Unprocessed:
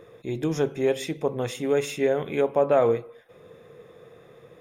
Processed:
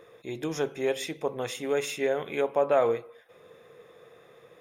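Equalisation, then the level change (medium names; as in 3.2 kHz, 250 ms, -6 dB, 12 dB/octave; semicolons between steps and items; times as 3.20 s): bass shelf 340 Hz -11.5 dB; band-stop 7.8 kHz, Q 15; 0.0 dB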